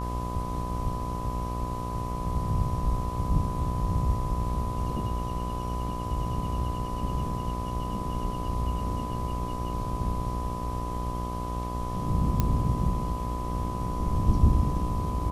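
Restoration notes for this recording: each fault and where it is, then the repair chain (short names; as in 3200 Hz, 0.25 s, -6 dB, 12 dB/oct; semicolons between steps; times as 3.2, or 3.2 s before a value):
buzz 60 Hz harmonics 21 -33 dBFS
tone 1000 Hz -35 dBFS
12.4 pop -11 dBFS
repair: de-click; notch 1000 Hz, Q 30; de-hum 60 Hz, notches 21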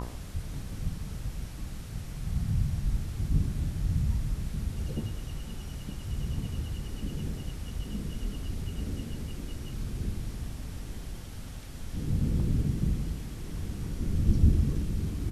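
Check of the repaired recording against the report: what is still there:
none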